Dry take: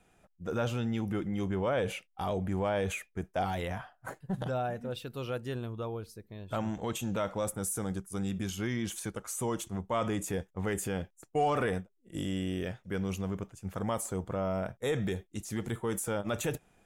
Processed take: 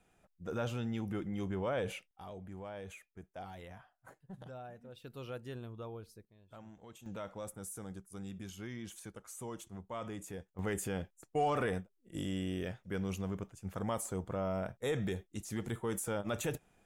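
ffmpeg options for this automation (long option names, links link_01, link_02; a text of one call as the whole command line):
ffmpeg -i in.wav -af "asetnsamples=nb_out_samples=441:pad=0,asendcmd='2.11 volume volume -15dB;5.04 volume volume -8dB;6.25 volume volume -19.5dB;7.06 volume volume -11dB;10.59 volume volume -3.5dB',volume=-5dB" out.wav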